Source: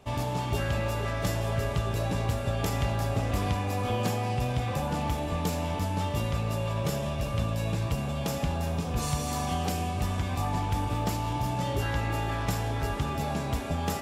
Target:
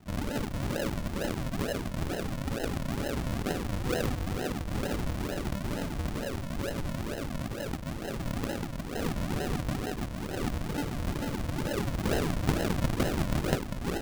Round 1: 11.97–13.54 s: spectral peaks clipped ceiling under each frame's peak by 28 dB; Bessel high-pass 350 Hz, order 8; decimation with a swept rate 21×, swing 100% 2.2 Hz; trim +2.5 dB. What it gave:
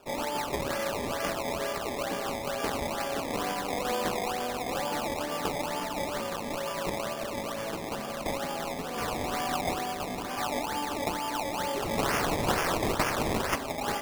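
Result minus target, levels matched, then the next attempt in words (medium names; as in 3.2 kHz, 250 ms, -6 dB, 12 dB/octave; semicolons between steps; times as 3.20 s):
decimation with a swept rate: distortion -32 dB
11.97–13.54 s: spectral peaks clipped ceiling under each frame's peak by 28 dB; Bessel high-pass 350 Hz, order 8; decimation with a swept rate 75×, swing 100% 2.2 Hz; trim +2.5 dB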